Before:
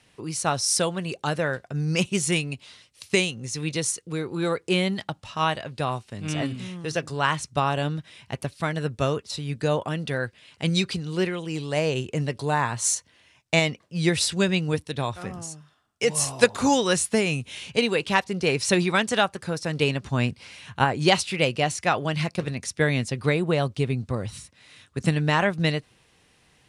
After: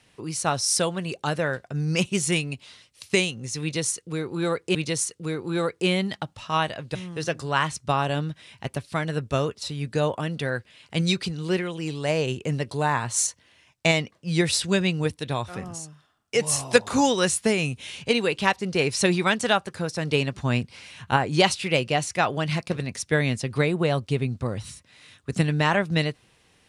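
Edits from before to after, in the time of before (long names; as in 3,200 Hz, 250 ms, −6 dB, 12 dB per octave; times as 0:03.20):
0:03.62–0:04.75: repeat, 2 plays
0:05.82–0:06.63: remove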